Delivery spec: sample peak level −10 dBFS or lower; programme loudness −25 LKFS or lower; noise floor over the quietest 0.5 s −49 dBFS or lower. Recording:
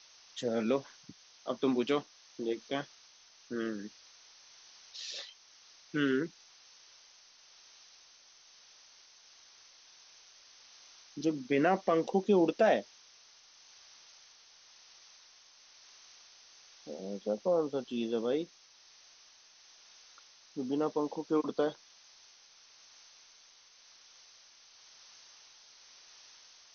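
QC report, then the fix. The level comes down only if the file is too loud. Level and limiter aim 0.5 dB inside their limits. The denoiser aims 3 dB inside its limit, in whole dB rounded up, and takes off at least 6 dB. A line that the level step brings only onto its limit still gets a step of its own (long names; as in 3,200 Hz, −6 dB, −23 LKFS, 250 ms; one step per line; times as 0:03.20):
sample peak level −15.5 dBFS: in spec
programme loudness −33.0 LKFS: in spec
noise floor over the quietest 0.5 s −60 dBFS: in spec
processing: no processing needed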